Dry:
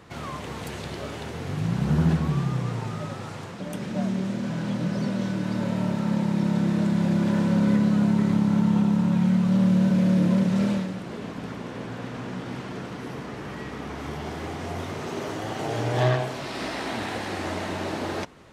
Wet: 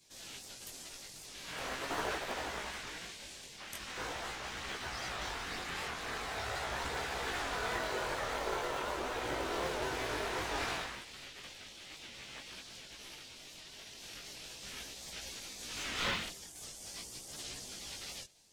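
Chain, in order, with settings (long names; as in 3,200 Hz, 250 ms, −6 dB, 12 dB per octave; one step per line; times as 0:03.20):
gate on every frequency bin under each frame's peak −25 dB weak
in parallel at −8.5 dB: decimation without filtering 32×
on the sum: multi-voice chorus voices 2, 0.43 Hz, delay 19 ms, depth 4.4 ms
wow of a warped record 78 rpm, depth 160 cents
level +4.5 dB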